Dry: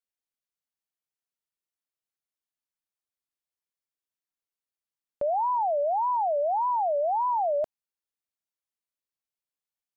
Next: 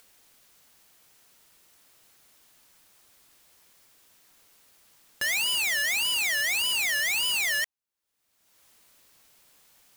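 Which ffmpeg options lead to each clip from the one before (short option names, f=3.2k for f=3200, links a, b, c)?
-af "acompressor=mode=upward:threshold=-35dB:ratio=2.5,aeval=exprs='(mod(15*val(0)+1,2)-1)/15':c=same"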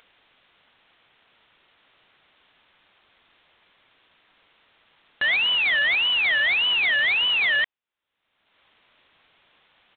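-af "aresample=8000,acrusher=bits=3:mode=log:mix=0:aa=0.000001,aresample=44100,lowshelf=f=470:g=-7,volume=6.5dB"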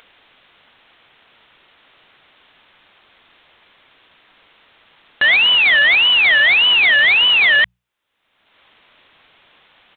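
-af "bandreject=f=60:t=h:w=6,bandreject=f=120:t=h:w=6,bandreject=f=180:t=h:w=6,volume=9dB"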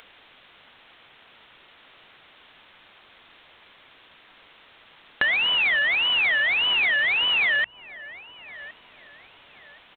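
-filter_complex "[0:a]acrossover=split=2800[a][b];[b]acompressor=threshold=-31dB:ratio=4:attack=1:release=60[c];[a][c]amix=inputs=2:normalize=0,asplit=2[d][e];[e]adelay=1066,lowpass=f=1.1k:p=1,volume=-21dB,asplit=2[f][g];[g]adelay=1066,lowpass=f=1.1k:p=1,volume=0.53,asplit=2[h][i];[i]adelay=1066,lowpass=f=1.1k:p=1,volume=0.53,asplit=2[j][k];[k]adelay=1066,lowpass=f=1.1k:p=1,volume=0.53[l];[d][f][h][j][l]amix=inputs=5:normalize=0,acompressor=threshold=-20dB:ratio=6"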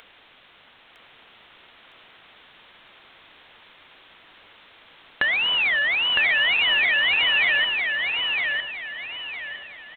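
-af "aecho=1:1:959|1918|2877|3836:0.668|0.227|0.0773|0.0263"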